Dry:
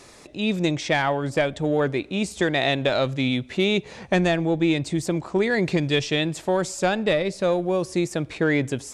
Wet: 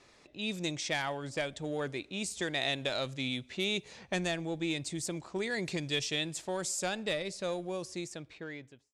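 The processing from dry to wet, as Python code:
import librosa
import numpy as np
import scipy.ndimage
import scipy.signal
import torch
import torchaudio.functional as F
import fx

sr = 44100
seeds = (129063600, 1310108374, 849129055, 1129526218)

y = fx.fade_out_tail(x, sr, length_s=1.28)
y = scipy.signal.lfilter([1.0, -0.8], [1.0], y)
y = fx.env_lowpass(y, sr, base_hz=2600.0, full_db=-30.0)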